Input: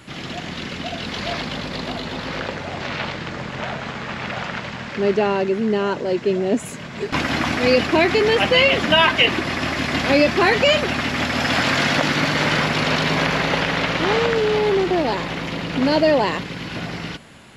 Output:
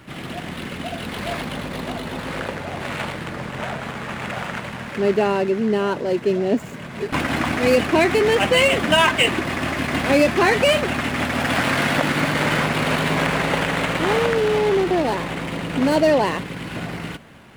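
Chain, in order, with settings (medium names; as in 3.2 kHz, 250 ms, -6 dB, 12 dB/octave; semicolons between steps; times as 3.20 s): median filter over 9 samples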